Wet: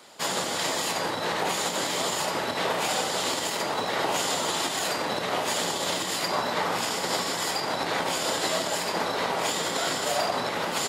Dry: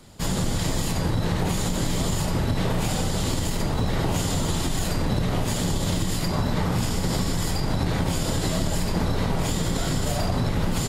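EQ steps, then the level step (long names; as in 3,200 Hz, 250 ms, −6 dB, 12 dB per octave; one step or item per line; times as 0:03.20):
high-pass filter 560 Hz 12 dB per octave
parametric band 14,000 Hz −6.5 dB 1.6 octaves
+5.5 dB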